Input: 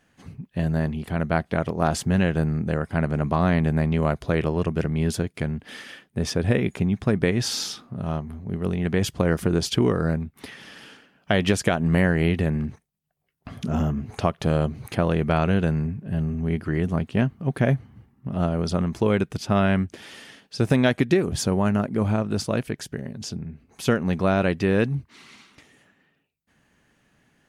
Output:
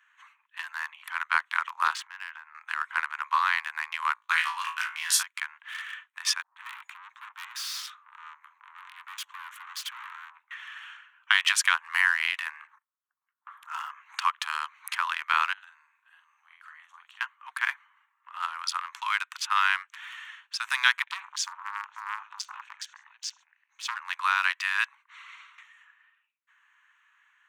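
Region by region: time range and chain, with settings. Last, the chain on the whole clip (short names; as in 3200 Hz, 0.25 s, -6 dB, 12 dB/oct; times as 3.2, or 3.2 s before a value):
1.93–2.55 air absorption 120 m + compressor 16:1, threshold -26 dBFS
4.14–5.23 high shelf 5100 Hz +6.5 dB + gate -32 dBFS, range -33 dB + flutter echo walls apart 3.1 m, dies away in 0.31 s
6.42–10.51 tube stage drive 34 dB, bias 0.6 + bands offset in time lows, highs 0.14 s, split 490 Hz + mismatched tape noise reduction encoder only
12.67–13.68 band shelf 3900 Hz -13.5 dB 2.3 oct + Doppler distortion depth 0.54 ms
15.53–17.21 band shelf 1400 Hz -9.5 dB 2.4 oct + compressor 10:1, threshold -28 dBFS + doubler 46 ms -5 dB
21.02–23.97 EQ curve 120 Hz 0 dB, 350 Hz -15 dB, 560 Hz -4 dB, 1100 Hz -13 dB, 2600 Hz -5 dB, 6300 Hz -1 dB, 11000 Hz -19 dB + tapped delay 49/79/570 ms -15.5/-14.5/-16.5 dB + core saturation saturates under 1400 Hz
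whole clip: Wiener smoothing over 9 samples; steep high-pass 980 Hz 72 dB/oct; gain +6 dB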